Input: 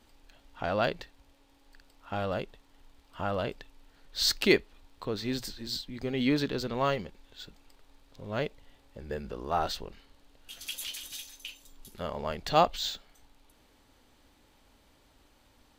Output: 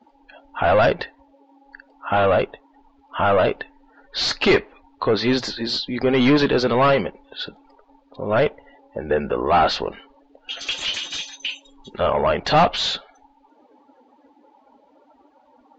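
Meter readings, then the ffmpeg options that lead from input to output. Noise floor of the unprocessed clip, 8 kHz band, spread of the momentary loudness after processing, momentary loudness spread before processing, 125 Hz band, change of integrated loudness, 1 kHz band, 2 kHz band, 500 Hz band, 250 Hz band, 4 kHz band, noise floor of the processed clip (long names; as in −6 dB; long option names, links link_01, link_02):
−64 dBFS, +3.5 dB, 16 LU, 22 LU, +10.0 dB, +11.0 dB, +12.0 dB, +11.5 dB, +13.0 dB, +10.5 dB, +9.5 dB, −58 dBFS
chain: -filter_complex "[0:a]asplit=2[link_01][link_02];[link_02]highpass=frequency=720:poles=1,volume=28dB,asoftclip=type=tanh:threshold=-9dB[link_03];[link_01][link_03]amix=inputs=2:normalize=0,lowpass=frequency=1500:poles=1,volume=-6dB,afftdn=noise_reduction=26:noise_floor=-41,volume=3dB" -ar 16000 -c:a libvorbis -b:a 64k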